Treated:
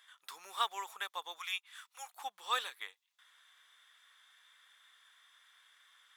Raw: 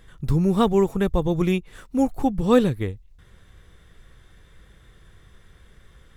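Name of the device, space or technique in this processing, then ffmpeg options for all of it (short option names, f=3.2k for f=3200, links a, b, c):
headphones lying on a table: -filter_complex "[0:a]asettb=1/sr,asplit=3[a][b][c];[a]atrim=end=1.384[d];[b]atrim=start=1.38:end=2.09,asetpts=PTS-STARTPTS,afade=t=in:d=0.004:c=qsin,afade=t=out:st=0.706:d=0.004:c=qsin,highpass=1k[e];[c]atrim=start=2.086[f];[d][e]acrossfade=d=0.004:c1=hsin:c2=qsin[g];[g][f]acrossfade=d=0.004:c1=qsin:c2=hsin,highpass=f=1k:w=0.5412,highpass=f=1k:w=1.3066,equalizer=f=3.4k:t=o:w=0.2:g=7,volume=-5dB"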